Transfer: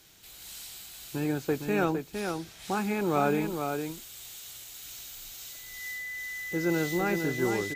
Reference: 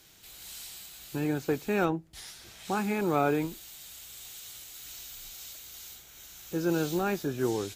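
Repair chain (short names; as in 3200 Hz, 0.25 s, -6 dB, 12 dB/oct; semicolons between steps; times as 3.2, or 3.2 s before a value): notch 2000 Hz, Q 30; inverse comb 0.459 s -6 dB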